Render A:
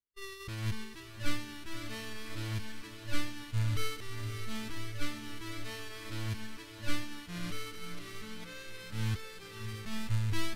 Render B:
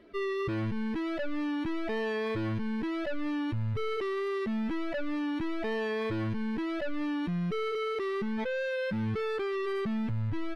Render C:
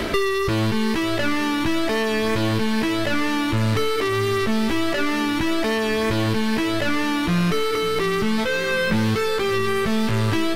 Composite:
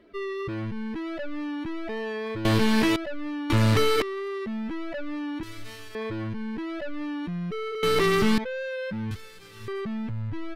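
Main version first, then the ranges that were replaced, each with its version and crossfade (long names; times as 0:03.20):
B
0:02.45–0:02.96: punch in from C
0:03.50–0:04.02: punch in from C
0:05.43–0:05.95: punch in from A
0:07.83–0:08.38: punch in from C
0:09.11–0:09.68: punch in from A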